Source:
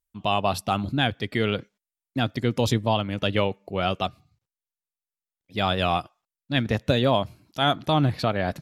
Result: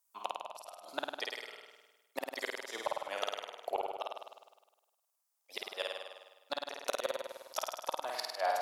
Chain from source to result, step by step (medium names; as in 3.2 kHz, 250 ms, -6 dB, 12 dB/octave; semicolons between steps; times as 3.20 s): high-pass 670 Hz 24 dB/octave; high-order bell 2.5 kHz -8.5 dB; compression 6:1, threshold -38 dBFS, peak gain reduction 16 dB; inverted gate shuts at -30 dBFS, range -27 dB; on a send: flutter echo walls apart 8.8 m, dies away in 1.2 s; on the sum: trim +9.5 dB